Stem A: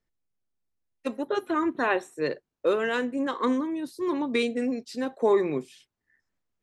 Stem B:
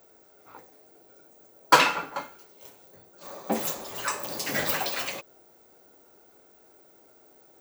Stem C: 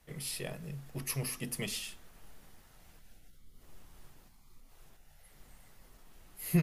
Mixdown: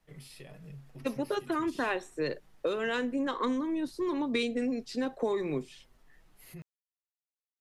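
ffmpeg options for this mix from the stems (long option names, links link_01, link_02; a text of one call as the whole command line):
ffmpeg -i stem1.wav -i stem2.wav -i stem3.wav -filter_complex "[0:a]volume=2dB[link_01];[2:a]volume=-2dB,flanger=delay=6.1:depth=2:regen=-28:speed=1.6:shape=triangular,alimiter=level_in=14dB:limit=-24dB:level=0:latency=1:release=51,volume=-14dB,volume=0dB[link_02];[link_01][link_02]amix=inputs=2:normalize=0,highshelf=frequency=7300:gain=-10,acrossover=split=150|3000[link_03][link_04][link_05];[link_04]acompressor=threshold=-29dB:ratio=6[link_06];[link_03][link_06][link_05]amix=inputs=3:normalize=0" out.wav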